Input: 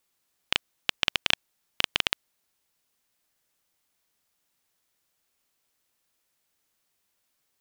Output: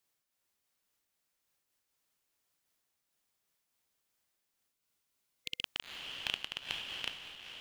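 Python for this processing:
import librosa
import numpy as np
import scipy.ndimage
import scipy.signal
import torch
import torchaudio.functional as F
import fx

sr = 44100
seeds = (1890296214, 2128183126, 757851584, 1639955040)

y = np.flip(x).copy()
y = fx.transient(y, sr, attack_db=-7, sustain_db=4)
y = fx.echo_diffused(y, sr, ms=477, feedback_pct=50, wet_db=-3.5)
y = fx.spec_repair(y, sr, seeds[0], start_s=4.79, length_s=0.81, low_hz=510.0, high_hz=2100.0, source='before')
y = fx.am_noise(y, sr, seeds[1], hz=5.7, depth_pct=55)
y = F.gain(torch.from_numpy(y), -4.5).numpy()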